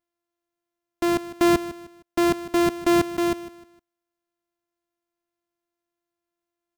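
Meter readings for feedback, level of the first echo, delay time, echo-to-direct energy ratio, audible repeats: 34%, −15.0 dB, 154 ms, −14.5 dB, 3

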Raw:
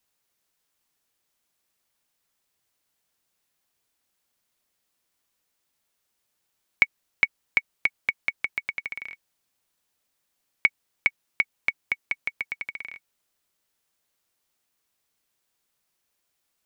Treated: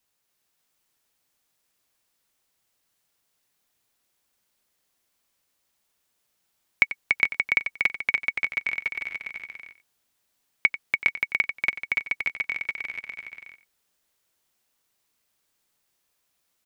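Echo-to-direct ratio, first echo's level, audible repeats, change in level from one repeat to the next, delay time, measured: −1.0 dB, −14.5 dB, 7, repeats not evenly spaced, 91 ms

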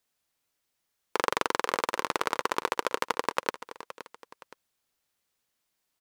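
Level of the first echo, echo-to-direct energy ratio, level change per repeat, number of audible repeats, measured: −14.5 dB, −14.0 dB, −7.5 dB, 2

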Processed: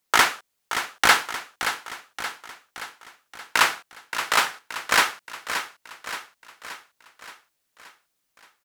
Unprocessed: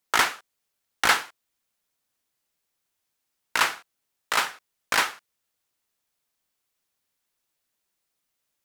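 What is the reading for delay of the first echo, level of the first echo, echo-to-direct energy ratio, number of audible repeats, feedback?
575 ms, −9.5 dB, −8.0 dB, 5, 55%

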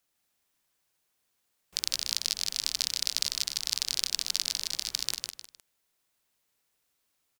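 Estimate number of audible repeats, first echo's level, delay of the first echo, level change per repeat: 3, −4.0 dB, 154 ms, −10.0 dB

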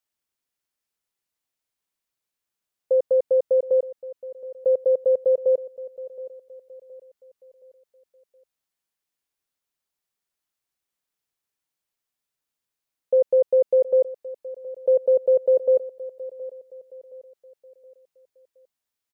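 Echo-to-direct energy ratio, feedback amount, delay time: −16.0 dB, 42%, 720 ms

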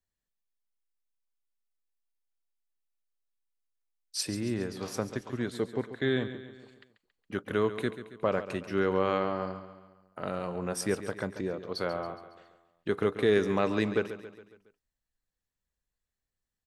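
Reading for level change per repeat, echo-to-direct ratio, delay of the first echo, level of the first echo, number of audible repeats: −6.0 dB, −11.0 dB, 138 ms, −12.5 dB, 4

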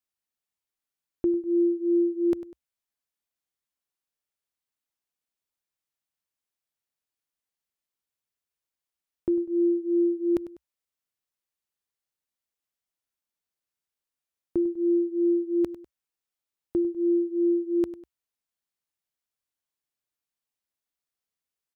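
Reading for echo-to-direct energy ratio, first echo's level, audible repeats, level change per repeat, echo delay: −15.0 dB, −15.5 dB, 2, −8.0 dB, 99 ms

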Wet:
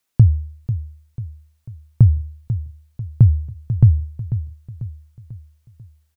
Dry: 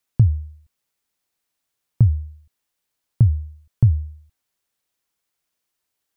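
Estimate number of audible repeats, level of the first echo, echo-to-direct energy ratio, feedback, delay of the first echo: 4, −11.5 dB, −10.5 dB, 46%, 493 ms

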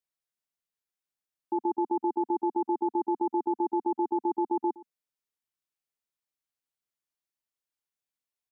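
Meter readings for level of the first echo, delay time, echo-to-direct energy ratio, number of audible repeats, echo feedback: −19.5 dB, 118 ms, −19.5 dB, 1, repeats not evenly spaced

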